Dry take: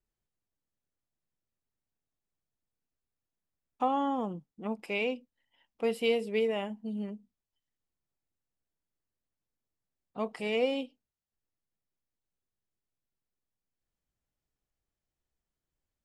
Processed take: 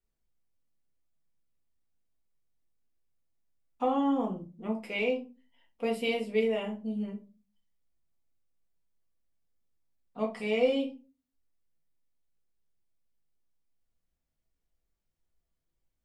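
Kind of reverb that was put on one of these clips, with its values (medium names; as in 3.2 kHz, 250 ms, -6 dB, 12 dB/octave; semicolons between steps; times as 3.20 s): simulated room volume 130 m³, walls furnished, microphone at 1.7 m; trim -3.5 dB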